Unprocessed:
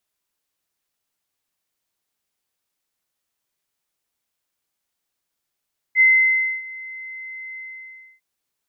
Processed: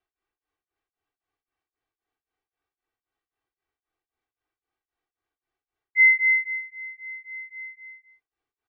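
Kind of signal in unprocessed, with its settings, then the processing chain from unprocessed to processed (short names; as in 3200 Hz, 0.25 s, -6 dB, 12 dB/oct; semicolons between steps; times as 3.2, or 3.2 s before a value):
ADSR sine 2060 Hz, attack 54 ms, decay 0.614 s, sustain -22 dB, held 1.62 s, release 0.633 s -9.5 dBFS
comb 2.6 ms, depth 88%; low-pass opened by the level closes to 1900 Hz, open at -21 dBFS; beating tremolo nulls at 3.8 Hz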